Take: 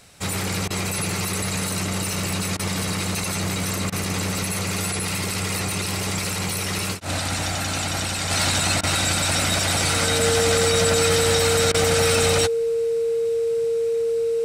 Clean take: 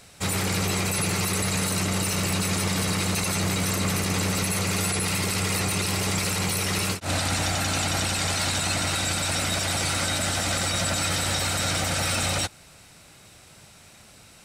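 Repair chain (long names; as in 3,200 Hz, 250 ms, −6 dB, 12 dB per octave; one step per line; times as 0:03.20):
notch filter 460 Hz, Q 30
repair the gap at 0:00.68/0:02.57/0:03.90/0:08.81/0:11.72, 22 ms
level correction −4.5 dB, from 0:08.31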